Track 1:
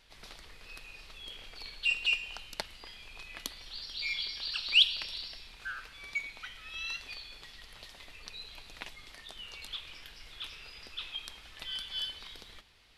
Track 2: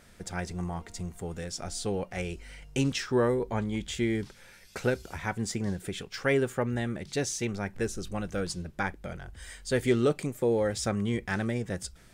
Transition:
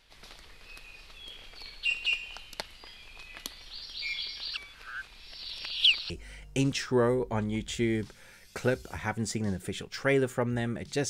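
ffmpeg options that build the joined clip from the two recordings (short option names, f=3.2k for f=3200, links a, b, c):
-filter_complex "[0:a]apad=whole_dur=11.09,atrim=end=11.09,asplit=2[a][b];[a]atrim=end=4.572[c];[b]atrim=start=4.568:end=6.102,asetpts=PTS-STARTPTS,areverse[d];[1:a]atrim=start=2.298:end=7.29[e];[c][d]acrossfade=d=0.004:c1=hsin:c2=hsin[f];[f][e]acrossfade=d=0.004:c1=hsin:c2=hsin"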